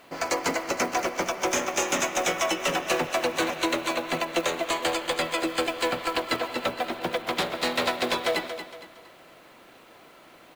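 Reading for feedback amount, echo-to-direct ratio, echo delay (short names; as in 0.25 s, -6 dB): 37%, -9.5 dB, 0.231 s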